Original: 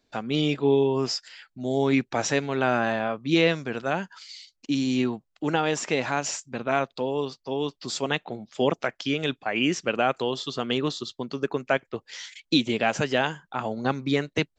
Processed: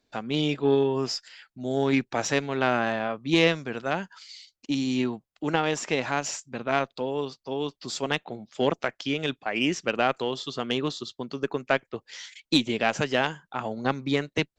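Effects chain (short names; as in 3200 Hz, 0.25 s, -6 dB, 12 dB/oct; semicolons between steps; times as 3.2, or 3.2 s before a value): added harmonics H 3 -18 dB, 4 -35 dB, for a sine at -7.5 dBFS; gain +2 dB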